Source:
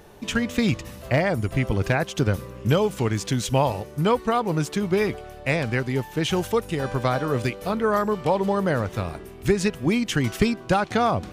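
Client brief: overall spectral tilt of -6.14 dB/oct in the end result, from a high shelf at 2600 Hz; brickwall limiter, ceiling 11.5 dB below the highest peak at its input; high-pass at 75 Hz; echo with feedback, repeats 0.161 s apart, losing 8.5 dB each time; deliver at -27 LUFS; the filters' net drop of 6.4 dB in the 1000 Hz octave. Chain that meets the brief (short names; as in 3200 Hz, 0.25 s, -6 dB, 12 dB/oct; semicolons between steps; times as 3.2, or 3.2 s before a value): HPF 75 Hz; bell 1000 Hz -8 dB; high shelf 2600 Hz -6 dB; limiter -18.5 dBFS; feedback echo 0.161 s, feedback 38%, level -8.5 dB; gain +1.5 dB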